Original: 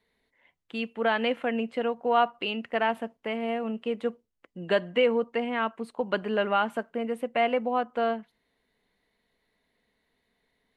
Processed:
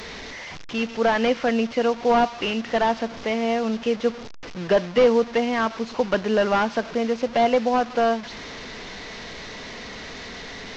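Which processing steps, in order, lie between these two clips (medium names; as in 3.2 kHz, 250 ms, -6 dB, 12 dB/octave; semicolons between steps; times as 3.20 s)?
one-bit delta coder 32 kbps, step -37.5 dBFS; trim +7 dB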